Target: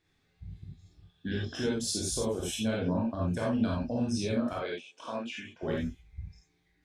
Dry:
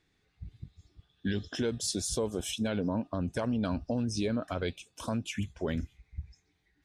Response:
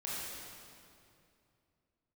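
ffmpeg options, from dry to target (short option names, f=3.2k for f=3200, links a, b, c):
-filter_complex "[0:a]asettb=1/sr,asplit=3[a][b][c];[a]atrim=end=4.534[d];[b]atrim=start=4.53:end=5.63,asetpts=PTS-STARTPTS,afade=t=in:d=0.004:c=qsin,afade=t=out:st=1.096:d=0.004:c=qsin,highpass=370,lowpass=3.9k[e];[c]atrim=start=5.626[f];[d][e]acrossfade=d=0.004:c1=hsin:c2=qsin[g];[g][f]acrossfade=d=0.004:c1=qsin:c2=hsin[h];[1:a]atrim=start_sample=2205,atrim=end_sample=4410[i];[h][i]afir=irnorm=-1:irlink=0,volume=2dB"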